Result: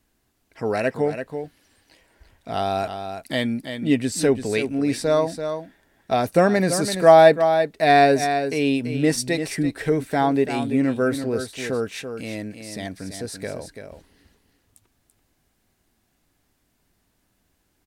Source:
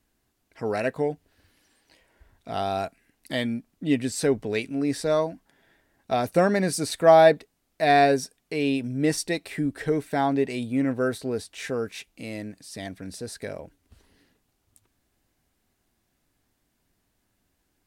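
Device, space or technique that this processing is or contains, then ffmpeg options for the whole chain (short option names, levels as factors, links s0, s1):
ducked delay: -filter_complex "[0:a]asplit=3[s0][s1][s2];[s1]adelay=336,volume=0.398[s3];[s2]apad=whole_len=802587[s4];[s3][s4]sidechaincompress=threshold=0.0501:ratio=8:attack=16:release=111[s5];[s0][s5]amix=inputs=2:normalize=0,volume=1.5"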